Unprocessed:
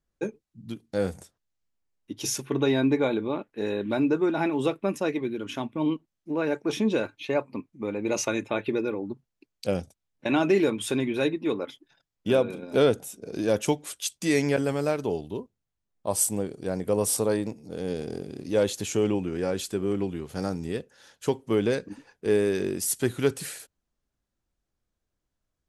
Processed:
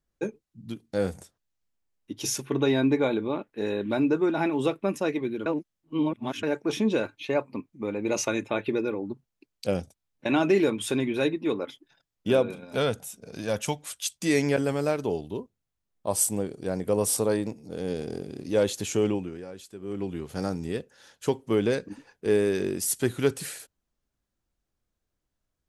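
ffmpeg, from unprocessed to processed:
ffmpeg -i in.wav -filter_complex "[0:a]asettb=1/sr,asplit=3[link_01][link_02][link_03];[link_01]atrim=end=12.534[link_04];[link_02]atrim=start=12.53:end=14.2,asetpts=PTS-STARTPTS,afade=type=in:duration=0.004:curve=qsin,afade=type=out:start_time=1.666:duration=0.004:curve=qsin,equalizer=frequency=350:width=1.5:gain=-11[link_05];[link_03]atrim=start=14.196[link_06];[link_04][link_05]acrossfade=duration=0.004:curve1=hsin:curve2=qsin[link_07];[link_07][link_06]acrossfade=duration=0.004:curve1=qsin:curve2=hsin,asplit=5[link_08][link_09][link_10][link_11][link_12];[link_08]atrim=end=5.462[link_13];[link_09]atrim=start=5.458:end=6.432,asetpts=PTS-STARTPTS,areverse[link_14];[link_10]atrim=start=6.428:end=19.45,asetpts=PTS-STARTPTS,afade=type=out:start_time=12.632:duration=0.39:silence=0.211349[link_15];[link_11]atrim=start=19.45:end=19.79,asetpts=PTS-STARTPTS,volume=-13.5dB[link_16];[link_12]atrim=start=19.79,asetpts=PTS-STARTPTS,afade=type=in:duration=0.39:silence=0.211349[link_17];[link_13][link_14]acrossfade=duration=0.004:curve1=hsin:curve2=hsin[link_18];[link_15][link_16][link_17]concat=n=3:v=0:a=1[link_19];[link_18][link_19]acrossfade=duration=0.004:curve1=hsin:curve2=hsin" out.wav

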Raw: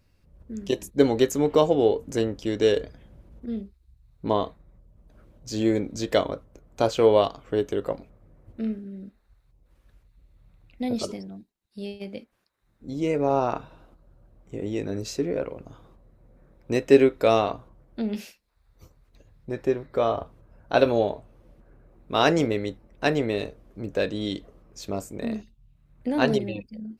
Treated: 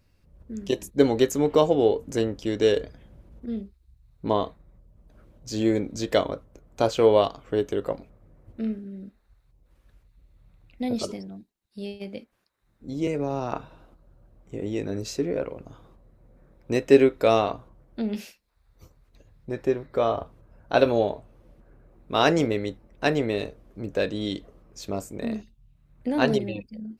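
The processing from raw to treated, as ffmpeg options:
ffmpeg -i in.wav -filter_complex "[0:a]asettb=1/sr,asplit=3[link_01][link_02][link_03];[link_01]atrim=end=13.074[link_04];[link_02]atrim=start=13.07:end=13.52,asetpts=PTS-STARTPTS,afade=type=in:duration=0.004:curve=qsin,afade=type=out:start_time=0.446:duration=0.004:curve=qsin,acrossover=split=270|3000[link_05][link_06][link_07];[link_06]acompressor=threshold=-26dB:ratio=6:attack=3.2:release=140:knee=2.83:detection=peak[link_08];[link_05][link_08][link_07]amix=inputs=3:normalize=0[link_09];[link_03]atrim=start=13.516[link_10];[link_04][link_09]acrossfade=duration=0.004:curve1=hsin:curve2=qsin[link_11];[link_11][link_10]acrossfade=duration=0.004:curve1=qsin:curve2=hsin" out.wav

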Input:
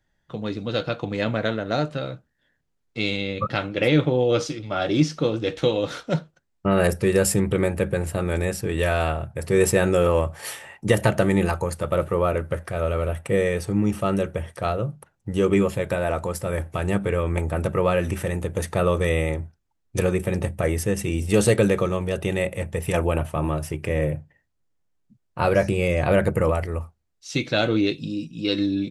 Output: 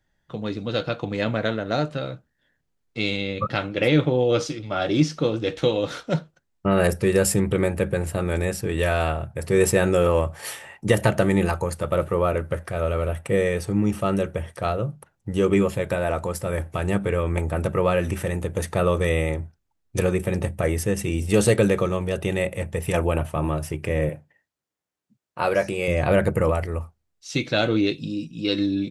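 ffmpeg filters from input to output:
ffmpeg -i in.wav -filter_complex "[0:a]asettb=1/sr,asplit=3[link_01][link_02][link_03];[link_01]atrim=end=24.094[link_04];[link_02]atrim=start=24.09:end=25.88,asetpts=PTS-STARTPTS,afade=type=in:duration=0.004:curve=qsin,afade=type=out:start_time=1.786:duration=0.004:curve=qsin,highpass=frequency=380:poles=1[link_05];[link_03]atrim=start=25.876[link_06];[link_04][link_05]acrossfade=duration=0.004:curve1=hsin:curve2=qsin[link_07];[link_07][link_06]acrossfade=duration=0.004:curve1=qsin:curve2=hsin" out.wav

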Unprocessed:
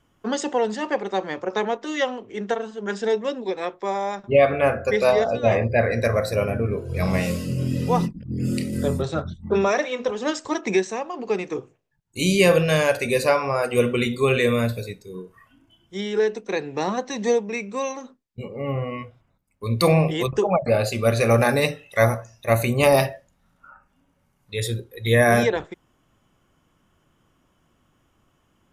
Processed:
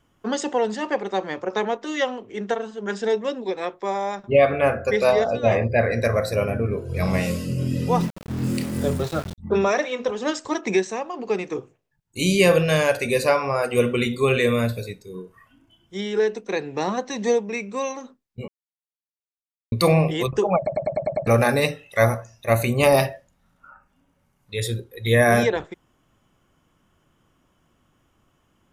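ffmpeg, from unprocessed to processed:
ffmpeg -i in.wav -filter_complex "[0:a]asettb=1/sr,asplit=3[link_01][link_02][link_03];[link_01]atrim=end=8.004[link_04];[link_02]atrim=start=8:end=9.38,asetpts=PTS-STARTPTS,afade=type=in:duration=0.004:curve=qsin,afade=type=out:start_time=1.376:duration=0.004:curve=qsin,aeval=exprs='val(0)*gte(abs(val(0)),0.0251)':channel_layout=same[link_05];[link_03]atrim=start=9.376[link_06];[link_04][link_05]acrossfade=duration=0.004:curve1=hsin:curve2=qsin[link_07];[link_07][link_06]acrossfade=duration=0.004:curve1=qsin:curve2=hsin,asplit=10[link_08][link_09][link_10][link_11][link_12][link_13][link_14][link_15][link_16][link_17];[link_08]atrim=end=18.48,asetpts=PTS-STARTPTS,afade=type=out:start_time=18.476:duration=0.004:curve=hsin[link_18];[link_09]atrim=start=18.48:end=19.72,asetpts=PTS-STARTPTS,volume=0[link_19];[link_10]atrim=start=19.72:end=20.672,asetpts=PTS-STARTPTS,afade=type=in:duration=0.004:curve=hsin[link_20];[link_11]atrim=start=20.568:end=20.672[link_21];[link_12]atrim=start=20.568:end=20.672[link_22];[link_13]atrim=start=20.568:end=20.672[link_23];[link_14]atrim=start=20.568:end=20.672[link_24];[link_15]atrim=start=20.568:end=20.672[link_25];[link_16]atrim=start=20.568:end=20.672[link_26];[link_17]atrim=start=21.268[link_27];[link_18][link_19][link_20]concat=n=3:v=0:a=1[link_28];[link_28][link_21]acrossfade=duration=0.004:curve1=hsin:curve2=hsin[link_29];[link_29][link_22]acrossfade=duration=0.004:curve1=hsin:curve2=hsin[link_30];[link_30][link_23]acrossfade=duration=0.004:curve1=hsin:curve2=hsin[link_31];[link_31][link_24]acrossfade=duration=0.004:curve1=hsin:curve2=hsin[link_32];[link_32][link_25]acrossfade=duration=0.004:curve1=hsin:curve2=hsin[link_33];[link_33][link_26]acrossfade=duration=0.004:curve1=hsin:curve2=hsin[link_34];[link_34][link_27]acrossfade=duration=0.004:curve1=hsin:curve2=hsin" out.wav

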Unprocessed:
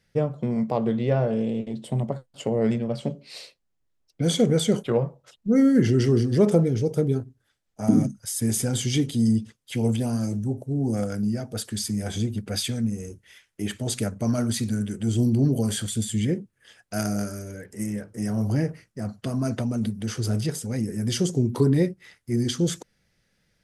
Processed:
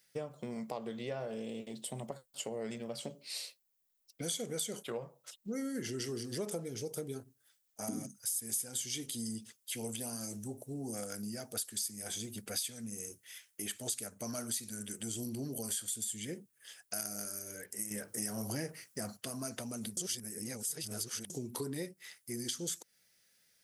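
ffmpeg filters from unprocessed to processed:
ffmpeg -i in.wav -filter_complex "[0:a]asplit=5[link_01][link_02][link_03][link_04][link_05];[link_01]atrim=end=17.912[link_06];[link_02]atrim=start=17.908:end=19.172,asetpts=PTS-STARTPTS,volume=8.5dB[link_07];[link_03]atrim=start=19.168:end=19.972[link_08];[link_04]atrim=start=19.968:end=21.302,asetpts=PTS-STARTPTS,areverse[link_09];[link_05]atrim=start=21.298[link_10];[link_06][link_07]acrossfade=duration=0.004:curve1=hsin:curve2=hsin[link_11];[link_11][link_08]acrossfade=duration=0.004:curve1=hsin:curve2=hsin[link_12];[link_12][link_09]acrossfade=duration=0.004:curve1=hsin:curve2=hsin[link_13];[link_13][link_10]acrossfade=duration=0.004:curve1=hsin:curve2=hsin,aemphasis=mode=production:type=riaa,acompressor=threshold=-32dB:ratio=3,volume=-6dB" out.wav

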